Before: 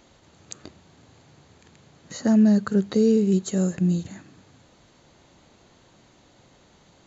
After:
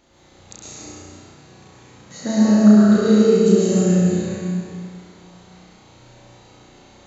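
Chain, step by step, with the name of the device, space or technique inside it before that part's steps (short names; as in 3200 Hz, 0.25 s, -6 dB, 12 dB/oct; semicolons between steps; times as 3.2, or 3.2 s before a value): tunnel (flutter echo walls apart 5.7 m, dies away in 0.9 s; reverb RT60 2.4 s, pre-delay 0.106 s, DRR -8 dB); gain -4 dB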